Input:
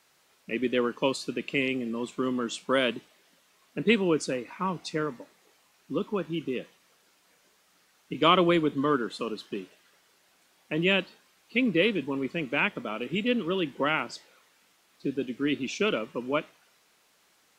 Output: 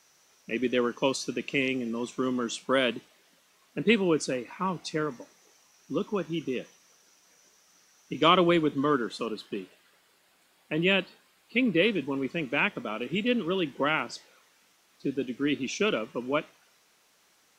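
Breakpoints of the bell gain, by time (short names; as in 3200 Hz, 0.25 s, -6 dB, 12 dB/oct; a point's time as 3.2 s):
bell 5900 Hz 0.24 oct
+12.5 dB
from 2.51 s +3.5 dB
from 5.11 s +14 dB
from 8.29 s +6 dB
from 9.26 s -5.5 dB
from 11.85 s +4 dB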